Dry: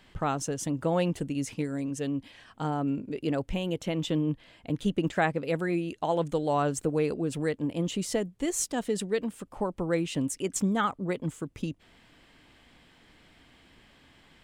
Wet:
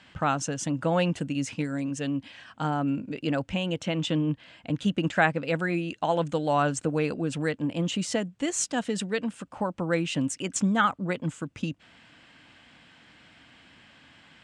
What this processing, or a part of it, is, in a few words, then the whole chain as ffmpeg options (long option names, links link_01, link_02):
car door speaker: -af "highpass=92,equalizer=frequency=400:width_type=q:width=4:gain=-9,equalizer=frequency=1500:width_type=q:width=4:gain=5,equalizer=frequency=2700:width_type=q:width=4:gain=4,lowpass=frequency=8400:width=0.5412,lowpass=frequency=8400:width=1.3066,volume=3dB"